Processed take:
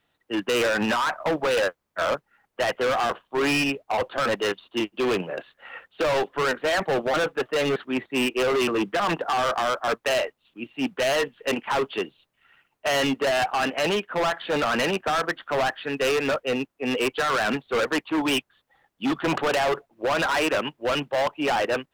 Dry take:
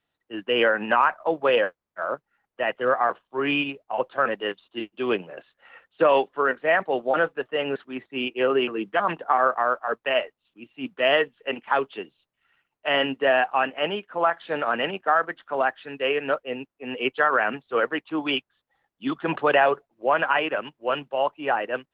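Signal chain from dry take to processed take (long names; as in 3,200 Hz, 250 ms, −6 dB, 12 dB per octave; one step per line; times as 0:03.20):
brickwall limiter −15.5 dBFS, peak gain reduction 8 dB
hard clipping −29 dBFS, distortion −6 dB
level +8.5 dB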